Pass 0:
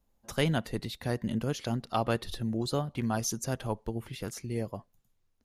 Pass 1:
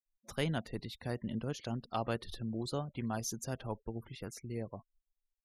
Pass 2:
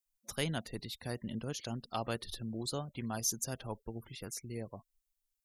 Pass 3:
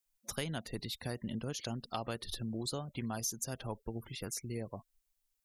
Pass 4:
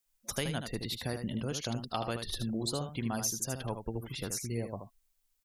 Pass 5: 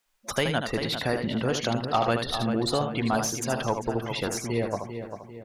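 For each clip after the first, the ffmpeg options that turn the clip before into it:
ffmpeg -i in.wav -af "afftfilt=real='re*gte(hypot(re,im),0.00447)':imag='im*gte(hypot(re,im),0.00447)':win_size=1024:overlap=0.75,volume=-6.5dB" out.wav
ffmpeg -i in.wav -af "highshelf=frequency=4000:gain=12,volume=-2dB" out.wav
ffmpeg -i in.wav -af "acompressor=threshold=-38dB:ratio=4,volume=3.5dB" out.wav
ffmpeg -i in.wav -af "aecho=1:1:77:0.422,volume=3.5dB" out.wav
ffmpeg -i in.wav -filter_complex "[0:a]asplit=2[link_01][link_02];[link_02]adelay=395,lowpass=frequency=2600:poles=1,volume=-9dB,asplit=2[link_03][link_04];[link_04]adelay=395,lowpass=frequency=2600:poles=1,volume=0.46,asplit=2[link_05][link_06];[link_06]adelay=395,lowpass=frequency=2600:poles=1,volume=0.46,asplit=2[link_07][link_08];[link_08]adelay=395,lowpass=frequency=2600:poles=1,volume=0.46,asplit=2[link_09][link_10];[link_10]adelay=395,lowpass=frequency=2600:poles=1,volume=0.46[link_11];[link_01][link_03][link_05][link_07][link_09][link_11]amix=inputs=6:normalize=0,asplit=2[link_12][link_13];[link_13]highpass=frequency=720:poles=1,volume=13dB,asoftclip=type=tanh:threshold=-16.5dB[link_14];[link_12][link_14]amix=inputs=2:normalize=0,lowpass=frequency=1600:poles=1,volume=-6dB,volume=8dB" out.wav

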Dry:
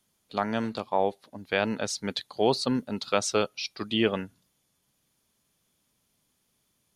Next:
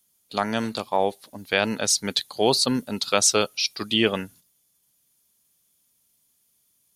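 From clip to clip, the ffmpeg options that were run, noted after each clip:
ffmpeg -i in.wav -af "agate=range=-8dB:threshold=-53dB:ratio=16:detection=peak,aemphasis=mode=production:type=75kf,volume=2.5dB" out.wav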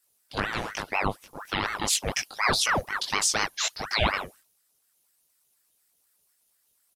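ffmpeg -i in.wav -filter_complex "[0:a]asplit=2[link_01][link_02];[link_02]adelay=20,volume=-2dB[link_03];[link_01][link_03]amix=inputs=2:normalize=0,alimiter=level_in=7dB:limit=-1dB:release=50:level=0:latency=1,aeval=exprs='val(0)*sin(2*PI*1000*n/s+1000*0.75/4.1*sin(2*PI*4.1*n/s))':channel_layout=same,volume=-9dB" out.wav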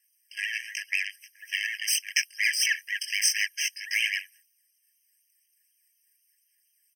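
ffmpeg -i in.wav -af "aeval=exprs='0.316*(cos(1*acos(clip(val(0)/0.316,-1,1)))-cos(1*PI/2))+0.0316*(cos(8*acos(clip(val(0)/0.316,-1,1)))-cos(8*PI/2))':channel_layout=same,aphaser=in_gain=1:out_gain=1:delay=2.3:decay=0.34:speed=0.92:type=sinusoidal,afftfilt=real='re*eq(mod(floor(b*sr/1024/1600),2),1)':imag='im*eq(mod(floor(b*sr/1024/1600),2),1)':win_size=1024:overlap=0.75,volume=2.5dB" out.wav

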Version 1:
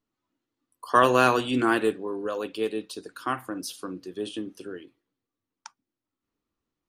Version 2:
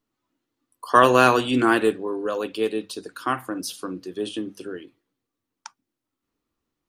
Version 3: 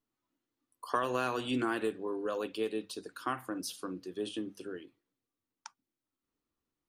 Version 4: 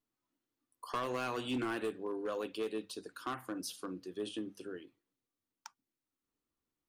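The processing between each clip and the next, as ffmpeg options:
ffmpeg -i in.wav -af "bandreject=frequency=50:width_type=h:width=6,bandreject=frequency=100:width_type=h:width=6,bandreject=frequency=150:width_type=h:width=6,bandreject=frequency=200:width_type=h:width=6,volume=4dB" out.wav
ffmpeg -i in.wav -af "acompressor=threshold=-20dB:ratio=6,volume=-8dB" out.wav
ffmpeg -i in.wav -af "volume=28dB,asoftclip=hard,volume=-28dB,volume=-2.5dB" out.wav

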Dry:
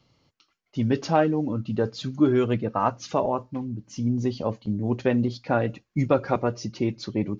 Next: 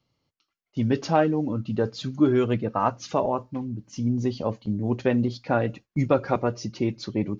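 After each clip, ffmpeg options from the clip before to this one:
ffmpeg -i in.wav -af "agate=range=-10dB:threshold=-45dB:ratio=16:detection=peak" out.wav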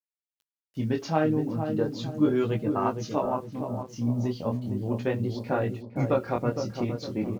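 ffmpeg -i in.wav -filter_complex "[0:a]flanger=delay=18.5:depth=7.2:speed=0.38,acrusher=bits=9:mix=0:aa=0.000001,asplit=2[link_01][link_02];[link_02]adelay=461,lowpass=frequency=810:poles=1,volume=-5.5dB,asplit=2[link_03][link_04];[link_04]adelay=461,lowpass=frequency=810:poles=1,volume=0.47,asplit=2[link_05][link_06];[link_06]adelay=461,lowpass=frequency=810:poles=1,volume=0.47,asplit=2[link_07][link_08];[link_08]adelay=461,lowpass=frequency=810:poles=1,volume=0.47,asplit=2[link_09][link_10];[link_10]adelay=461,lowpass=frequency=810:poles=1,volume=0.47,asplit=2[link_11][link_12];[link_12]adelay=461,lowpass=frequency=810:poles=1,volume=0.47[link_13];[link_03][link_05][link_07][link_09][link_11][link_13]amix=inputs=6:normalize=0[link_14];[link_01][link_14]amix=inputs=2:normalize=0,volume=-1dB" out.wav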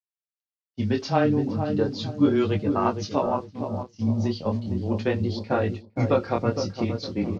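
ffmpeg -i in.wav -af "lowpass=frequency=4900:width_type=q:width=2.1,agate=range=-33dB:threshold=-30dB:ratio=3:detection=peak,afreqshift=-14,volume=3dB" out.wav

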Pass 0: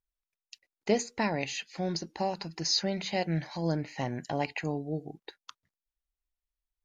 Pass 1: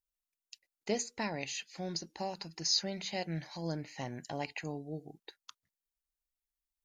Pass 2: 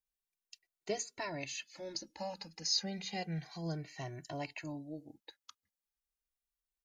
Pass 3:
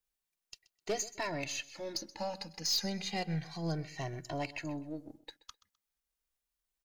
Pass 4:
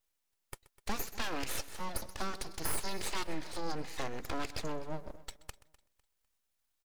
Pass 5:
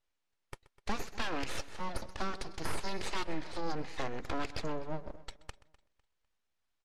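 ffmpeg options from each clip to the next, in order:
ffmpeg -i in.wav -af "highshelf=frequency=4500:gain=10,volume=-7.5dB" out.wav
ffmpeg -i in.wav -filter_complex "[0:a]asplit=2[link_01][link_02];[link_02]adelay=2.1,afreqshift=-0.32[link_03];[link_01][link_03]amix=inputs=2:normalize=1" out.wav
ffmpeg -i in.wav -af "aeval=exprs='if(lt(val(0),0),0.708*val(0),val(0))':channel_layout=same,aecho=1:1:128|256:0.112|0.0303,asoftclip=type=hard:threshold=-32dB,volume=5dB" out.wav
ffmpeg -i in.wav -af "acompressor=threshold=-37dB:ratio=2.5,aeval=exprs='abs(val(0))':channel_layout=same,aecho=1:1:251|502|753:0.0944|0.0321|0.0109,volume=6dB" out.wav
ffmpeg -i in.wav -af "adynamicsmooth=sensitivity=4.5:basefreq=5100,volume=2dB" -ar 44100 -c:a libmp3lame -b:a 80k out.mp3

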